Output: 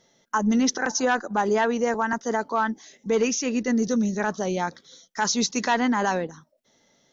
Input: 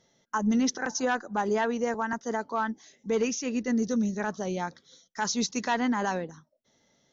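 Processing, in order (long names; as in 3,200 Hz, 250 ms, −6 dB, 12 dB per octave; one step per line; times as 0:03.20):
parametric band 85 Hz −5.5 dB 2 octaves
in parallel at +1 dB: output level in coarse steps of 22 dB
on the sum: level +4 dB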